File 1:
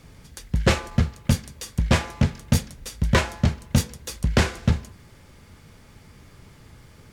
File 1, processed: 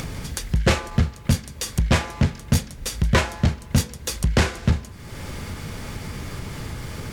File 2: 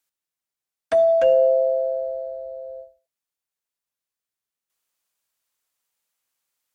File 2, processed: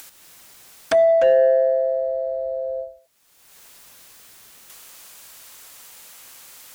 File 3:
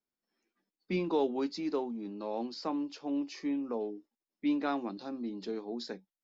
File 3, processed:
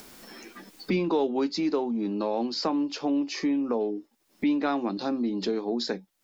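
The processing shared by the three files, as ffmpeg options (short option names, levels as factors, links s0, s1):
-af "acompressor=mode=upward:threshold=0.0891:ratio=2.5,asoftclip=type=tanh:threshold=0.316,volume=1.33"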